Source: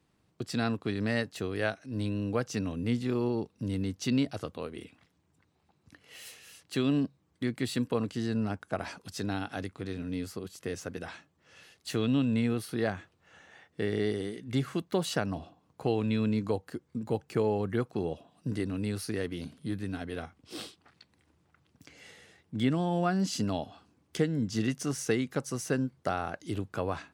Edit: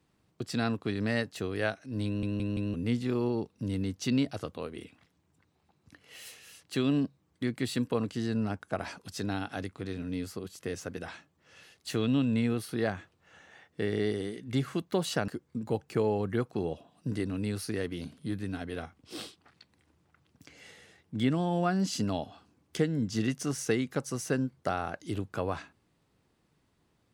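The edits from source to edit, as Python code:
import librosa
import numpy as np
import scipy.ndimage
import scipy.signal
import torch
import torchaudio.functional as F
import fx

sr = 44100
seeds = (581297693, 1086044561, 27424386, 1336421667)

y = fx.edit(x, sr, fx.stutter_over(start_s=2.06, slice_s=0.17, count=4),
    fx.cut(start_s=15.28, length_s=1.4), tone=tone)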